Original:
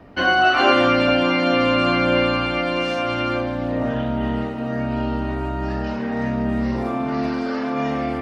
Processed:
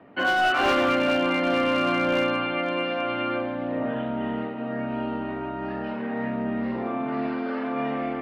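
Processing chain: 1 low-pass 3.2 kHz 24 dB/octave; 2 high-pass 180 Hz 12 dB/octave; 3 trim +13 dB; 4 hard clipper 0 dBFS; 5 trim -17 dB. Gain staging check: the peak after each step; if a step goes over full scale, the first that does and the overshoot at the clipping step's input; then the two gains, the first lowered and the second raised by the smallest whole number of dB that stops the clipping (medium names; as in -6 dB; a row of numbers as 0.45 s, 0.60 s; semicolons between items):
-2.0 dBFS, -3.5 dBFS, +9.5 dBFS, 0.0 dBFS, -17.0 dBFS; step 3, 9.5 dB; step 3 +3 dB, step 5 -7 dB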